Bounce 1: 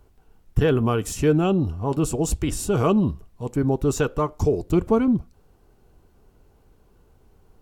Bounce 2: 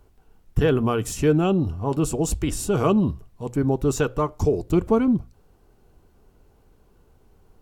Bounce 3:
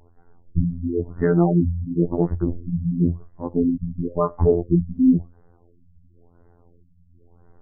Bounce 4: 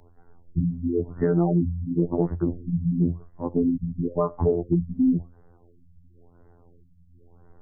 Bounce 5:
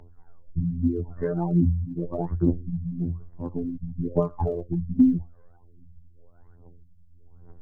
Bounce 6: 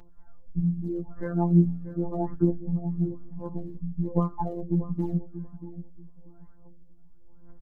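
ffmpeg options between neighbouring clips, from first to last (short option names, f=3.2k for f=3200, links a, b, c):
-af "bandreject=f=60:t=h:w=6,bandreject=f=120:t=h:w=6"
-af "afftfilt=real='hypot(re,im)*cos(PI*b)':imag='0':win_size=2048:overlap=0.75,afftfilt=real='re*lt(b*sr/1024,220*pow(2100/220,0.5+0.5*sin(2*PI*0.96*pts/sr)))':imag='im*lt(b*sr/1024,220*pow(2100/220,0.5+0.5*sin(2*PI*0.96*pts/sr)))':win_size=1024:overlap=0.75,volume=6.5dB"
-filter_complex "[0:a]acrossover=split=88|1300[a][b][c];[a]acompressor=threshold=-40dB:ratio=4[d];[b]acompressor=threshold=-18dB:ratio=4[e];[c]acompressor=threshold=-49dB:ratio=4[f];[d][e][f]amix=inputs=3:normalize=0"
-af "aphaser=in_gain=1:out_gain=1:delay=2:decay=0.71:speed=1.2:type=triangular,volume=-4.5dB"
-filter_complex "[0:a]afftfilt=real='hypot(re,im)*cos(PI*b)':imag='0':win_size=1024:overlap=0.75,asplit=2[a][b];[b]adelay=635,lowpass=f=910:p=1,volume=-12dB,asplit=2[c][d];[d]adelay=635,lowpass=f=910:p=1,volume=0.22,asplit=2[e][f];[f]adelay=635,lowpass=f=910:p=1,volume=0.22[g];[a][c][e][g]amix=inputs=4:normalize=0,volume=3dB"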